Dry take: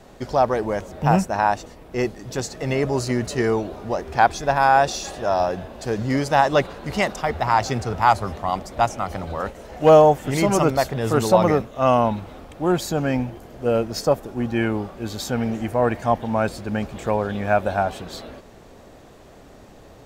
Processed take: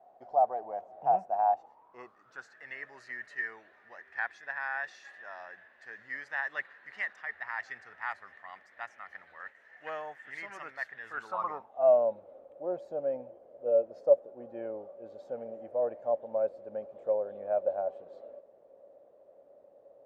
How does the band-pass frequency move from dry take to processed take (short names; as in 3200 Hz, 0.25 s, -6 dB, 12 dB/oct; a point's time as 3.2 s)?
band-pass, Q 11
1.48 s 720 Hz
2.69 s 1800 Hz
11.06 s 1800 Hz
12 s 560 Hz